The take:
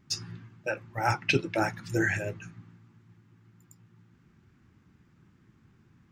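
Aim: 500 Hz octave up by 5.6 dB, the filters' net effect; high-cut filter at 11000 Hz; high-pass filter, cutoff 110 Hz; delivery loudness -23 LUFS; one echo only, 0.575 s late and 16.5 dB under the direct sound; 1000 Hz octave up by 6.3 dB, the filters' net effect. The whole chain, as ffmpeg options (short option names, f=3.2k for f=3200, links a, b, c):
-af "highpass=110,lowpass=11k,equalizer=f=500:t=o:g=5.5,equalizer=f=1k:t=o:g=6.5,aecho=1:1:575:0.15,volume=4dB"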